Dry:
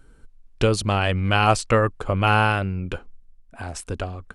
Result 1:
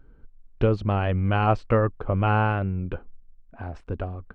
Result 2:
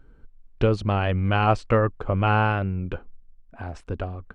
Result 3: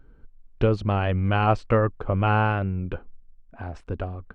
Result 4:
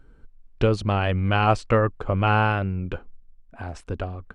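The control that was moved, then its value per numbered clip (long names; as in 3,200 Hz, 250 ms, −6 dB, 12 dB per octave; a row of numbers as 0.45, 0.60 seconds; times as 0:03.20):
head-to-tape spacing loss, at 10 kHz: 45, 28, 37, 20 decibels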